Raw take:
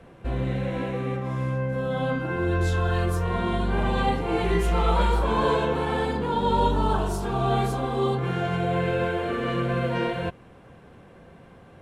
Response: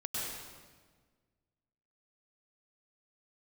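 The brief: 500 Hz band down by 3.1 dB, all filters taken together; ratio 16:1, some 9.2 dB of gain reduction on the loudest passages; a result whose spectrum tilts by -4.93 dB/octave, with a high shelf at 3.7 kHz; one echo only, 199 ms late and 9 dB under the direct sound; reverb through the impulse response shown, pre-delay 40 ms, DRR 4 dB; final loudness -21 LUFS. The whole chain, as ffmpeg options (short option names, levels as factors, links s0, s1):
-filter_complex "[0:a]equalizer=f=500:t=o:g=-4,highshelf=f=3700:g=8,acompressor=threshold=0.0447:ratio=16,aecho=1:1:199:0.355,asplit=2[s0][s1];[1:a]atrim=start_sample=2205,adelay=40[s2];[s1][s2]afir=irnorm=-1:irlink=0,volume=0.422[s3];[s0][s3]amix=inputs=2:normalize=0,volume=2.82"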